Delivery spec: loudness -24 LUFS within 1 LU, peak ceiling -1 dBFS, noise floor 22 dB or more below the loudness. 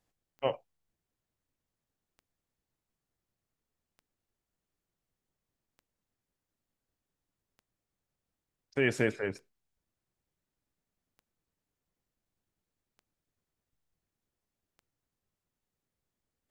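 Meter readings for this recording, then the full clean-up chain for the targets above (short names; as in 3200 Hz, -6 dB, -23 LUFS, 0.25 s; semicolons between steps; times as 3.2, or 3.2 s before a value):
clicks 9; loudness -32.5 LUFS; peak -13.0 dBFS; loudness target -24.0 LUFS
-> de-click; gain +8.5 dB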